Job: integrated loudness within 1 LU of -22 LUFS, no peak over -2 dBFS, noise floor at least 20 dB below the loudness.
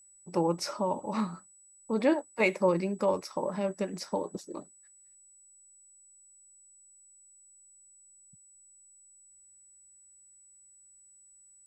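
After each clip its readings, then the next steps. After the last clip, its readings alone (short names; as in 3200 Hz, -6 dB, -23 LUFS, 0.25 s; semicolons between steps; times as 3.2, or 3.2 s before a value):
steady tone 7900 Hz; tone level -56 dBFS; loudness -31.0 LUFS; peak -12.5 dBFS; loudness target -22.0 LUFS
-> notch 7900 Hz, Q 30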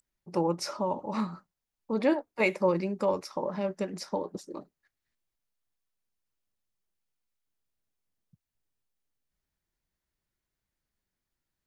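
steady tone none; loudness -30.5 LUFS; peak -12.5 dBFS; loudness target -22.0 LUFS
-> gain +8.5 dB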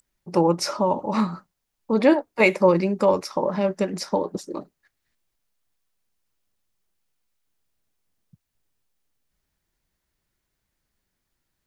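loudness -22.0 LUFS; peak -4.0 dBFS; noise floor -79 dBFS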